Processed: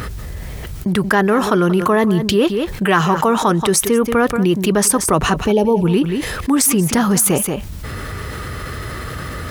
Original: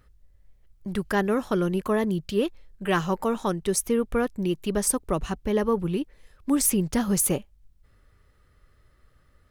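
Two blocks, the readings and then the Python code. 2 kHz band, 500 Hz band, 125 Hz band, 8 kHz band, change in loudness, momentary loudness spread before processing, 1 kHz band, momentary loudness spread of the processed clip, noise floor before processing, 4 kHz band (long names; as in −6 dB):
+13.0 dB, +9.5 dB, +11.5 dB, +10.0 dB, +10.0 dB, 9 LU, +13.0 dB, 14 LU, −61 dBFS, +13.5 dB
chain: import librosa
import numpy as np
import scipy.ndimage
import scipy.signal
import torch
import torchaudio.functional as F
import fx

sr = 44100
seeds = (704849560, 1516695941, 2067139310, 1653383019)

p1 = fx.spec_box(x, sr, start_s=5.47, length_s=0.37, low_hz=1000.0, high_hz=2200.0, gain_db=-23)
p2 = scipy.signal.sosfilt(scipy.signal.butter(2, 80.0, 'highpass', fs=sr, output='sos'), p1)
p3 = fx.notch(p2, sr, hz=560.0, q=12.0)
p4 = fx.dynamic_eq(p3, sr, hz=1200.0, q=0.73, threshold_db=-40.0, ratio=4.0, max_db=6)
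p5 = fx.rider(p4, sr, range_db=5, speed_s=0.5)
p6 = p5 + fx.echo_single(p5, sr, ms=181, db=-17.5, dry=0)
p7 = fx.env_flatten(p6, sr, amount_pct=70)
y = p7 * 10.0 ** (4.5 / 20.0)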